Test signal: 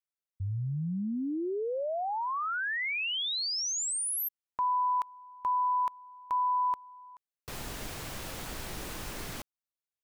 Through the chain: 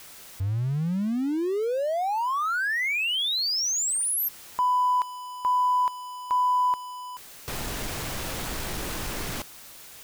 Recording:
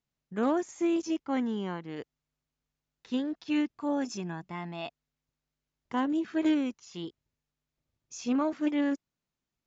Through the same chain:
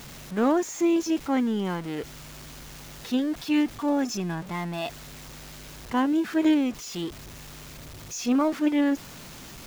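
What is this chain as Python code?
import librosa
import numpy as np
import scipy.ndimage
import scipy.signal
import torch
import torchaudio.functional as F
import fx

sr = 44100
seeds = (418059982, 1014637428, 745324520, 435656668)

y = x + 0.5 * 10.0 ** (-40.0 / 20.0) * np.sign(x)
y = F.gain(torch.from_numpy(y), 4.5).numpy()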